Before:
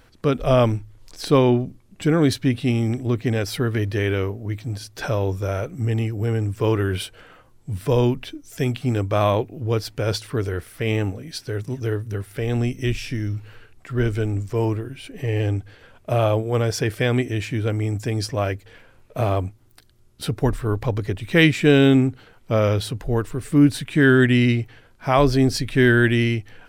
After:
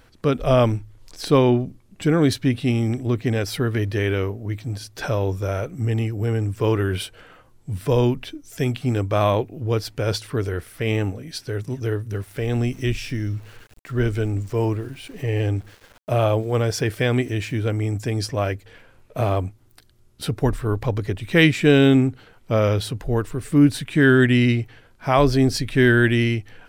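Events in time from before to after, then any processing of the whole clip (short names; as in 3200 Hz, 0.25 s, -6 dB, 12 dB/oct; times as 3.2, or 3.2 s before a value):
12.11–17.68 sample gate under -45 dBFS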